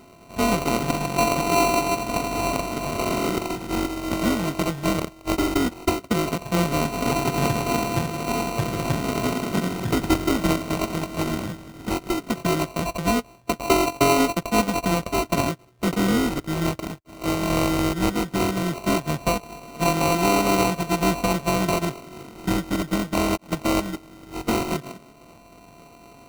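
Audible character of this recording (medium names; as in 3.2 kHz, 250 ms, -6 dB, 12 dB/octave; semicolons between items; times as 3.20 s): a buzz of ramps at a fixed pitch in blocks of 64 samples; phasing stages 8, 0.16 Hz, lowest notch 580–2400 Hz; aliases and images of a low sample rate 1.7 kHz, jitter 0%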